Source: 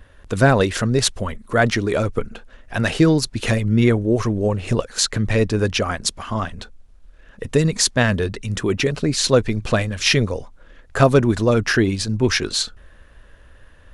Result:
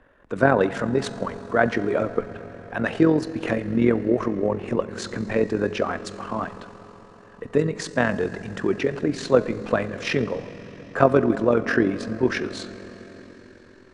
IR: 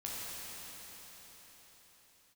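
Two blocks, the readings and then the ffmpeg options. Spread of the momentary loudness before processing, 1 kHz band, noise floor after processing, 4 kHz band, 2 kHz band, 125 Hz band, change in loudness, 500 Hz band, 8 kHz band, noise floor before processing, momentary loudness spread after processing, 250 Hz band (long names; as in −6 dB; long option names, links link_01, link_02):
10 LU, −2.0 dB, −49 dBFS, −14.5 dB, −4.5 dB, −10.5 dB, −4.5 dB, −1.5 dB, −17.5 dB, −48 dBFS, 16 LU, −3.0 dB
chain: -filter_complex "[0:a]lowpass=frequency=9500:width=0.5412,lowpass=frequency=9500:width=1.3066,acrossover=split=180 2100:gain=0.112 1 0.158[link_01][link_02][link_03];[link_01][link_02][link_03]amix=inputs=3:normalize=0,bandreject=frequency=211.8:width_type=h:width=4,bandreject=frequency=423.6:width_type=h:width=4,bandreject=frequency=635.4:width_type=h:width=4,bandreject=frequency=847.2:width_type=h:width=4,bandreject=frequency=1059:width_type=h:width=4,bandreject=frequency=1270.8:width_type=h:width=4,bandreject=frequency=1482.6:width_type=h:width=4,bandreject=frequency=1694.4:width_type=h:width=4,bandreject=frequency=1906.2:width_type=h:width=4,bandreject=frequency=2118:width_type=h:width=4,bandreject=frequency=2329.8:width_type=h:width=4,bandreject=frequency=2541.6:width_type=h:width=4,bandreject=frequency=2753.4:width_type=h:width=4,bandreject=frequency=2965.2:width_type=h:width=4,bandreject=frequency=3177:width_type=h:width=4,bandreject=frequency=3388.8:width_type=h:width=4,bandreject=frequency=3600.6:width_type=h:width=4,bandreject=frequency=3812.4:width_type=h:width=4,bandreject=frequency=4024.2:width_type=h:width=4,bandreject=frequency=4236:width_type=h:width=4,bandreject=frequency=4447.8:width_type=h:width=4,bandreject=frequency=4659.6:width_type=h:width=4,bandreject=frequency=4871.4:width_type=h:width=4,bandreject=frequency=5083.2:width_type=h:width=4,bandreject=frequency=5295:width_type=h:width=4,bandreject=frequency=5506.8:width_type=h:width=4,bandreject=frequency=5718.6:width_type=h:width=4,bandreject=frequency=5930.4:width_type=h:width=4,bandreject=frequency=6142.2:width_type=h:width=4,bandreject=frequency=6354:width_type=h:width=4,bandreject=frequency=6565.8:width_type=h:width=4,bandreject=frequency=6777.6:width_type=h:width=4,bandreject=frequency=6989.4:width_type=h:width=4,bandreject=frequency=7201.2:width_type=h:width=4,bandreject=frequency=7413:width_type=h:width=4,bandreject=frequency=7624.8:width_type=h:width=4,bandreject=frequency=7836.6:width_type=h:width=4,bandreject=frequency=8048.4:width_type=h:width=4,bandreject=frequency=8260.2:width_type=h:width=4,bandreject=frequency=8472:width_type=h:width=4,asplit=2[link_04][link_05];[1:a]atrim=start_sample=2205,lowshelf=frequency=170:gain=12[link_06];[link_05][link_06]afir=irnorm=-1:irlink=0,volume=-14.5dB[link_07];[link_04][link_07]amix=inputs=2:normalize=0,tremolo=f=44:d=0.519"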